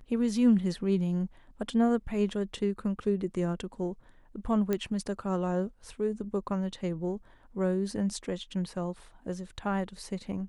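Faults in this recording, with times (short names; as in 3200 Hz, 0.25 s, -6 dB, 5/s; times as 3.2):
4.73 pop -16 dBFS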